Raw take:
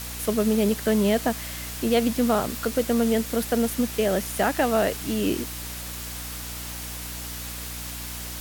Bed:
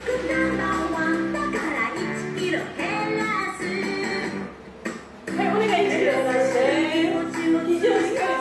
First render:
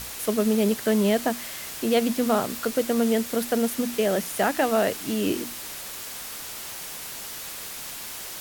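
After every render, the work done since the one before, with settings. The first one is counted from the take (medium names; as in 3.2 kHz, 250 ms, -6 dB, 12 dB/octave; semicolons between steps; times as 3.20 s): hum notches 60/120/180/240/300 Hz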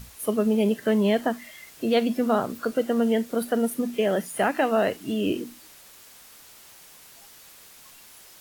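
noise print and reduce 13 dB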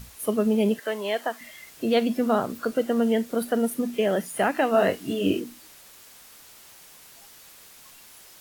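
0.79–1.41 s: high-pass 570 Hz; 4.72–5.40 s: doubling 21 ms -3.5 dB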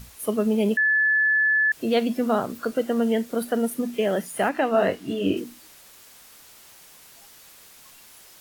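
0.77–1.72 s: bleep 1.73 kHz -17 dBFS; 4.49–5.37 s: treble shelf 6 kHz -8.5 dB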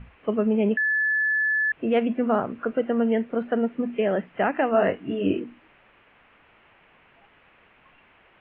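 steep low-pass 2.8 kHz 48 dB/octave; dynamic bell 1.7 kHz, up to -3 dB, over -30 dBFS, Q 5.9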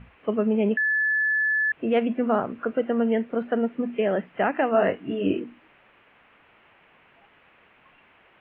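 bass shelf 66 Hz -8.5 dB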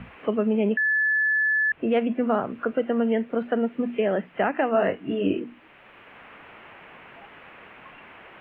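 three bands compressed up and down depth 40%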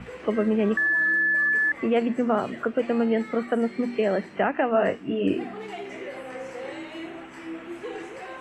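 add bed -16 dB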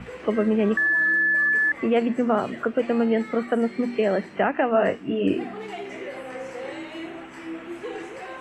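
trim +1.5 dB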